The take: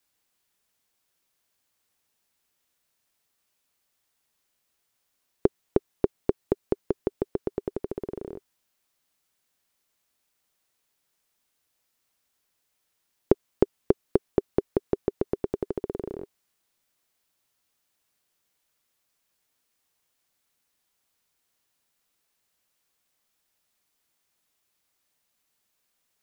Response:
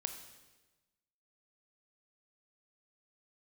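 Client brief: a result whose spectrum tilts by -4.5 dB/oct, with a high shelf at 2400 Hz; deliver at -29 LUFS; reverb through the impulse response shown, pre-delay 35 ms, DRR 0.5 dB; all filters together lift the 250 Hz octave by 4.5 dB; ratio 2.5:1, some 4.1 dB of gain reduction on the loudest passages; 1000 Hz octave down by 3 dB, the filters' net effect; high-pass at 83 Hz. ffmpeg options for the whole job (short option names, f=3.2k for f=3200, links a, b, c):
-filter_complex "[0:a]highpass=83,equalizer=f=250:t=o:g=7,equalizer=f=1k:t=o:g=-4,highshelf=f=2.4k:g=-6,acompressor=threshold=-19dB:ratio=2.5,asplit=2[a][b];[1:a]atrim=start_sample=2205,adelay=35[c];[b][c]afir=irnorm=-1:irlink=0,volume=0dB[d];[a][d]amix=inputs=2:normalize=0,volume=-1dB"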